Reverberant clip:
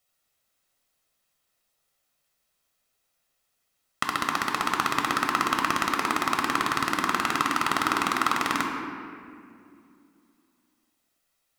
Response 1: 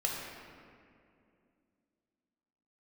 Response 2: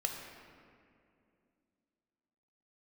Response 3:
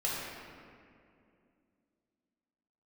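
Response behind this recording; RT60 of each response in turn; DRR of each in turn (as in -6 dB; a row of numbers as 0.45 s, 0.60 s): 2; 2.5 s, 2.5 s, 2.4 s; -2.5 dB, 1.5 dB, -7.0 dB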